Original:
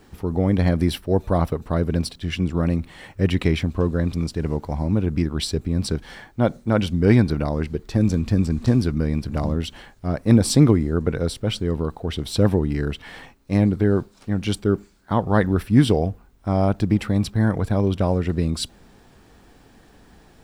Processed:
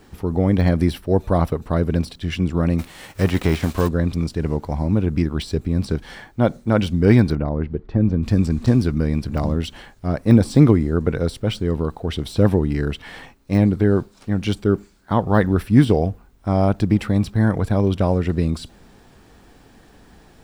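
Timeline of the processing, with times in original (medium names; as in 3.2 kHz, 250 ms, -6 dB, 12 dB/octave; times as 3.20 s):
2.78–3.87 s: formants flattened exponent 0.6
7.35–8.23 s: tape spacing loss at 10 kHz 41 dB
whole clip: de-esser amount 75%; trim +2 dB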